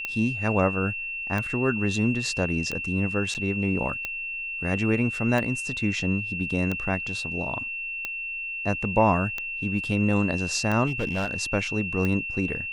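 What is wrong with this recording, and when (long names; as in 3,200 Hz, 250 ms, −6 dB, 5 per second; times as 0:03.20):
scratch tick 45 rpm −15 dBFS
whistle 2,700 Hz −30 dBFS
0:03.34–0:03.35: drop-out 8.9 ms
0:10.86–0:11.34: clipping −22 dBFS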